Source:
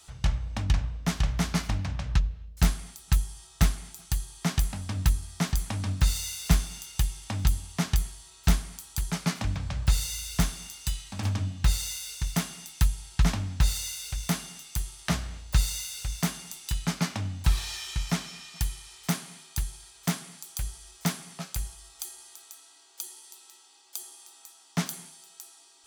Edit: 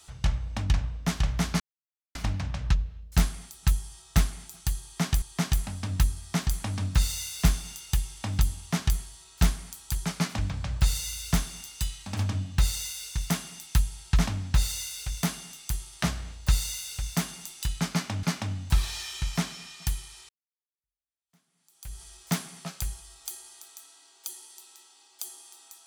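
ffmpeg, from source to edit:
ffmpeg -i in.wav -filter_complex "[0:a]asplit=5[link_01][link_02][link_03][link_04][link_05];[link_01]atrim=end=1.6,asetpts=PTS-STARTPTS,afade=type=out:start_time=1.596:duration=0.004:curve=hsin,apad=pad_dur=0.55[link_06];[link_02]atrim=start=1.6:end=4.672,asetpts=PTS-STARTPTS,afade=type=in:duration=0.004:curve=hsin[link_07];[link_03]atrim=start=4.278:end=17.292[link_08];[link_04]atrim=start=16.968:end=19.03,asetpts=PTS-STARTPTS,afade=type=out:start_time=2.058:duration=0.004:curve=hsin[link_09];[link_05]atrim=start=19.03,asetpts=PTS-STARTPTS,afade=type=in:duration=1.74:curve=exp[link_10];[link_06][link_07]concat=n=2:v=0:a=1[link_11];[link_11][link_08]acrossfade=duration=0.004:curve1=hsin:curve2=hsin[link_12];[link_09][link_10]concat=n=2:v=0:a=1[link_13];[link_12][link_13]acrossfade=duration=0.004:curve1=hsin:curve2=hsin" out.wav

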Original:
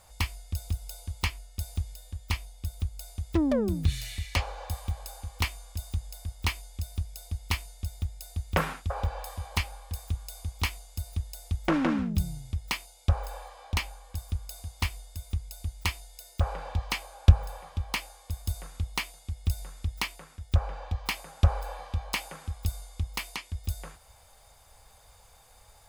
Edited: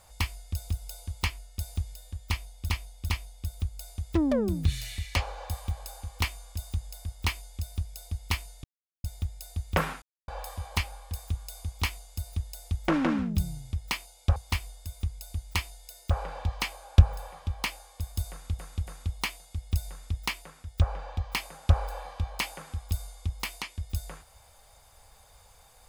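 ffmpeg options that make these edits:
ffmpeg -i in.wav -filter_complex "[0:a]asplit=9[link_01][link_02][link_03][link_04][link_05][link_06][link_07][link_08][link_09];[link_01]atrim=end=2.692[link_10];[link_02]atrim=start=2.288:end=2.692[link_11];[link_03]atrim=start=2.288:end=7.84,asetpts=PTS-STARTPTS,afade=type=out:start_time=5.548:duration=0.004:curve=hsin,apad=pad_dur=0.4[link_12];[link_04]atrim=start=7.84:end=8.82,asetpts=PTS-STARTPTS,afade=type=in:duration=0.004:curve=hsin,afade=type=out:start_time=0.976:duration=0.004:curve=hsin[link_13];[link_05]atrim=start=8.82:end=9.08,asetpts=PTS-STARTPTS,volume=0[link_14];[link_06]atrim=start=9.08:end=13.162,asetpts=PTS-STARTPTS,afade=type=in:duration=0.004:curve=hsin[link_15];[link_07]atrim=start=14.658:end=18.892[link_16];[link_08]atrim=start=18.608:end=18.892[link_17];[link_09]atrim=start=18.608[link_18];[link_10][link_11]acrossfade=duration=0.004:curve1=hsin:curve2=hsin[link_19];[link_12][link_13][link_14][link_15]concat=n=4:v=0:a=1[link_20];[link_19][link_20]acrossfade=duration=0.004:curve1=hsin:curve2=hsin[link_21];[link_21][link_16]acrossfade=duration=0.004:curve1=hsin:curve2=hsin[link_22];[link_22][link_17]acrossfade=duration=0.004:curve1=hsin:curve2=hsin[link_23];[link_23][link_18]acrossfade=duration=0.004:curve1=hsin:curve2=hsin" out.wav

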